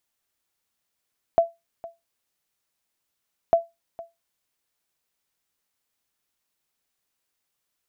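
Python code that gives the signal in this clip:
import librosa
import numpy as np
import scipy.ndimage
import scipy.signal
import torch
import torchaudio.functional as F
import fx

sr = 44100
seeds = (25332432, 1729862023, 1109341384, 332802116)

y = fx.sonar_ping(sr, hz=673.0, decay_s=0.2, every_s=2.15, pings=2, echo_s=0.46, echo_db=-20.0, level_db=-9.0)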